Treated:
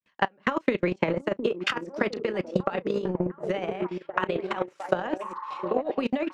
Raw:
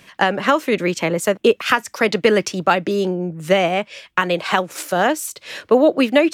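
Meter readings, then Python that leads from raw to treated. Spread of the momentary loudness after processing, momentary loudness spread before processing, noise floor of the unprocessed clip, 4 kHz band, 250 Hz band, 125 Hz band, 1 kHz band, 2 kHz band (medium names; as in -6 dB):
5 LU, 8 LU, -53 dBFS, -13.0 dB, -9.0 dB, -7.5 dB, -11.0 dB, -11.5 dB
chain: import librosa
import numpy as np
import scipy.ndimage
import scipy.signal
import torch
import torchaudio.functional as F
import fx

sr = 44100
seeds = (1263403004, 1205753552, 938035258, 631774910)

y = fx.fade_in_head(x, sr, length_s=0.63)
y = fx.notch(y, sr, hz=700.0, q=12.0)
y = fx.level_steps(y, sr, step_db=23)
y = fx.doubler(y, sr, ms=33.0, db=-13)
y = fx.echo_stepped(y, sr, ms=708, hz=290.0, octaves=0.7, feedback_pct=70, wet_db=-3.0)
y = fx.dynamic_eq(y, sr, hz=930.0, q=1.4, threshold_db=-35.0, ratio=4.0, max_db=4)
y = fx.over_compress(y, sr, threshold_db=-23.0, ratio=-0.5)
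y = fx.transient(y, sr, attack_db=10, sustain_db=-11)
y = fx.spec_repair(y, sr, seeds[0], start_s=5.24, length_s=0.43, low_hz=820.0, high_hz=2100.0, source='after')
y = scipy.signal.sosfilt(scipy.signal.butter(2, 7000.0, 'lowpass', fs=sr, output='sos'), y)
y = fx.high_shelf(y, sr, hz=4100.0, db=-7.0)
y = y * 10.0 ** (-5.5 / 20.0)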